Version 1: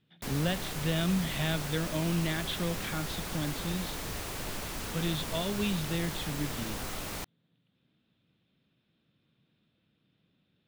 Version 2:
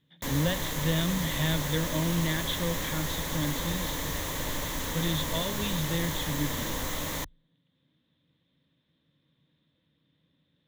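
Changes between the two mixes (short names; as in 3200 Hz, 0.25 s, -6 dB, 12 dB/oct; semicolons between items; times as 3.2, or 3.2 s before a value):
background +4.0 dB; master: add ripple EQ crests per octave 1.1, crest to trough 8 dB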